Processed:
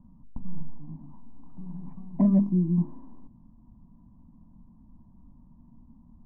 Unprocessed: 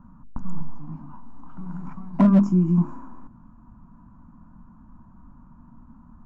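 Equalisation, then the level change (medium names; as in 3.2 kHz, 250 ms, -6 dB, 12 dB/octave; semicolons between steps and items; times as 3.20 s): boxcar filter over 32 samples; distance through air 86 m; -4.5 dB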